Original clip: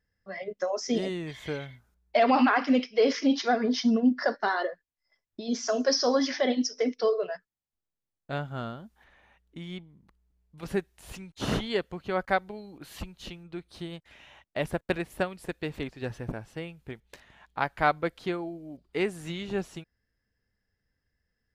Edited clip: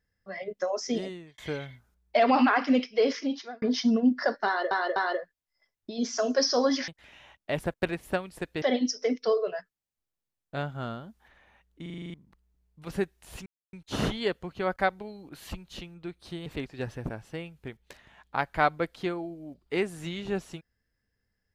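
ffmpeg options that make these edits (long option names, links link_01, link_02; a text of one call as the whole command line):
ffmpeg -i in.wav -filter_complex "[0:a]asplit=17[link_01][link_02][link_03][link_04][link_05][link_06][link_07][link_08][link_09][link_10][link_11][link_12][link_13][link_14][link_15][link_16][link_17];[link_01]atrim=end=1.38,asetpts=PTS-STARTPTS,afade=type=out:start_time=0.82:duration=0.56[link_18];[link_02]atrim=start=1.38:end=3.62,asetpts=PTS-STARTPTS,afade=type=in:duration=0.004:curve=hsin,afade=type=out:start_time=1.55:duration=0.69[link_19];[link_03]atrim=start=3.62:end=4.712,asetpts=PTS-STARTPTS,afade=type=in:duration=0.004:curve=hsin[link_20];[link_04]atrim=start=4.458:end=4.712[link_21];[link_05]atrim=start=4.458:end=6.382[link_22];[link_06]atrim=start=13.948:end=15.692[link_23];[link_07]atrim=start=6.378:end=9.622[link_24];[link_08]atrim=start=9.578:end=9.622[link_25];[link_09]atrim=start=9.578:end=9.622[link_26];[link_10]atrim=start=9.578:end=9.622[link_27];[link_11]atrim=start=9.578:end=9.622[link_28];[link_12]atrim=start=9.578:end=9.622[link_29];[link_13]atrim=start=9.578:end=9.622[link_30];[link_14]atrim=start=9.578:end=9.622[link_31];[link_15]atrim=start=9.898:end=11.22,asetpts=PTS-STARTPTS,afade=type=out:start_time=1.318:duration=0.004:curve=hsin,apad=pad_dur=0.27[link_32];[link_16]atrim=start=11.22:end=13.952,asetpts=PTS-STARTPTS,afade=type=in:duration=0.004:curve=hsin[link_33];[link_17]atrim=start=15.688[link_34];[link_18][link_19][link_20]concat=n=3:v=0:a=1[link_35];[link_35][link_21]acrossfade=duration=0.004:curve1=hsin:curve2=hsin[link_36];[link_36][link_22]acrossfade=duration=0.004:curve1=hsin:curve2=hsin[link_37];[link_37][link_23]acrossfade=duration=0.004:curve1=hsin:curve2=hsin[link_38];[link_38][link_24]acrossfade=duration=0.004:curve1=hsin:curve2=hsin[link_39];[link_39][link_25]acrossfade=duration=0.004:curve1=hsin:curve2=hsin[link_40];[link_40][link_26]acrossfade=duration=0.004:curve1=hsin:curve2=hsin[link_41];[link_41][link_27]acrossfade=duration=0.004:curve1=hsin:curve2=hsin[link_42];[link_42][link_28]acrossfade=duration=0.004:curve1=hsin:curve2=hsin[link_43];[link_43][link_29]acrossfade=duration=0.004:curve1=hsin:curve2=hsin[link_44];[link_44][link_30]acrossfade=duration=0.004:curve1=hsin:curve2=hsin[link_45];[link_45][link_31]acrossfade=duration=0.004:curve1=hsin:curve2=hsin[link_46];[link_32][link_33]concat=n=2:v=0:a=1[link_47];[link_46][link_47]acrossfade=duration=0.004:curve1=hsin:curve2=hsin[link_48];[link_48][link_34]acrossfade=duration=0.004:curve1=hsin:curve2=hsin" out.wav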